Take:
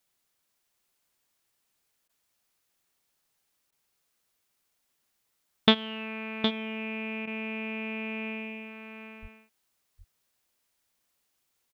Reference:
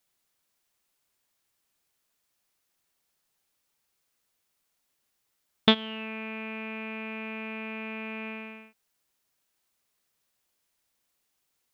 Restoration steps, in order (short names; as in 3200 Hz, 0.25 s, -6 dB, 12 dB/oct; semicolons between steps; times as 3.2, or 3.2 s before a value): de-plosive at 9.21; interpolate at 2.08/3.71/7.26, 12 ms; inverse comb 0.764 s -7.5 dB